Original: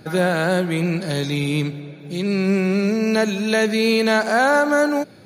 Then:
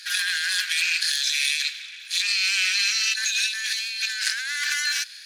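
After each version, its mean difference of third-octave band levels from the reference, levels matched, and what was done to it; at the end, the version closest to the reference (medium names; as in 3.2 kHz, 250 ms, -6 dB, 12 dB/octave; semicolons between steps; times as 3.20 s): 21.0 dB: comb filter that takes the minimum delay 1.2 ms; elliptic high-pass 1.6 kHz, stop band 60 dB; peaking EQ 5.5 kHz +14 dB 2.6 oct; compressor with a negative ratio -25 dBFS, ratio -1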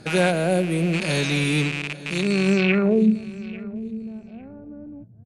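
11.5 dB: rattle on loud lows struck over -35 dBFS, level -16 dBFS; low-pass sweep 8.5 kHz -> 110 Hz, 2.51–3.19 s; feedback delay 849 ms, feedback 18%, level -20 dB; time-frequency box 0.31–0.93 s, 770–9200 Hz -9 dB; trim -1 dB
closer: second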